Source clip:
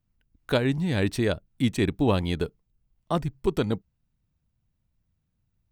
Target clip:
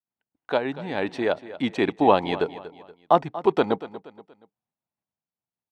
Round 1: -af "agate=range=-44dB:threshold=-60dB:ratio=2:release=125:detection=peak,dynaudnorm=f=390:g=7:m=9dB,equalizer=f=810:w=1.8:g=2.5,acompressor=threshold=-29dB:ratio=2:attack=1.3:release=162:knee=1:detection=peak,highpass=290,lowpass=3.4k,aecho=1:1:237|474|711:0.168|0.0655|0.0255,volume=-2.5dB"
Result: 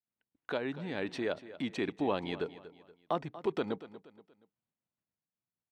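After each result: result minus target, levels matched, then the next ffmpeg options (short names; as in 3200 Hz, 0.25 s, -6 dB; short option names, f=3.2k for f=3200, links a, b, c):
compressor: peak gain reduction +12.5 dB; 1000 Hz band -4.0 dB
-af "agate=range=-44dB:threshold=-60dB:ratio=2:release=125:detection=peak,dynaudnorm=f=390:g=7:m=9dB,highpass=290,lowpass=3.4k,equalizer=f=810:w=1.8:g=2.5,aecho=1:1:237|474|711:0.168|0.0655|0.0255,volume=-2.5dB"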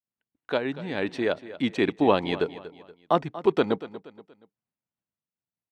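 1000 Hz band -3.5 dB
-af "agate=range=-44dB:threshold=-60dB:ratio=2:release=125:detection=peak,dynaudnorm=f=390:g=7:m=9dB,highpass=290,lowpass=3.4k,equalizer=f=810:w=1.8:g=10,aecho=1:1:237|474|711:0.168|0.0655|0.0255,volume=-2.5dB"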